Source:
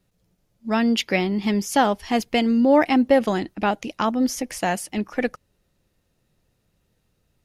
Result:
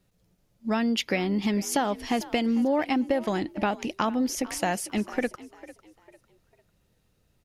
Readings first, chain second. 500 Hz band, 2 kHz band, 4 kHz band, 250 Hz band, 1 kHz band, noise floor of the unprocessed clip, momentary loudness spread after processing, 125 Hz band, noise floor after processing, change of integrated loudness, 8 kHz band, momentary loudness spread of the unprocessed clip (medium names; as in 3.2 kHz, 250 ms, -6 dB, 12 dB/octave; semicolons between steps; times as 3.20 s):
-6.5 dB, -5.5 dB, -4.5 dB, -5.0 dB, -6.0 dB, -70 dBFS, 6 LU, -4.0 dB, -69 dBFS, -5.5 dB, -1.5 dB, 10 LU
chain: compression 6:1, threshold -22 dBFS, peak gain reduction 10 dB; on a send: frequency-shifting echo 449 ms, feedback 33%, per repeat +52 Hz, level -18 dB